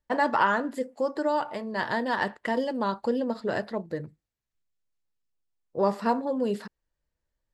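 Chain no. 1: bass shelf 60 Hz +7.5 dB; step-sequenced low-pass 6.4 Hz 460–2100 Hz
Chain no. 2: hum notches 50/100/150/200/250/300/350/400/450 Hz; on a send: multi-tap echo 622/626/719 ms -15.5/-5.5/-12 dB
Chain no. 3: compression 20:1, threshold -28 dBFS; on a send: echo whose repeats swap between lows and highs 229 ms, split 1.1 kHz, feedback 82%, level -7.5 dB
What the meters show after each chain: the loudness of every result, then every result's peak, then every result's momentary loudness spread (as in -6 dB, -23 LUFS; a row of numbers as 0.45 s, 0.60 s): -24.0 LUFS, -27.5 LUFS, -34.0 LUFS; -7.0 dBFS, -9.5 dBFS, -18.0 dBFS; 10 LU, 10 LU, 13 LU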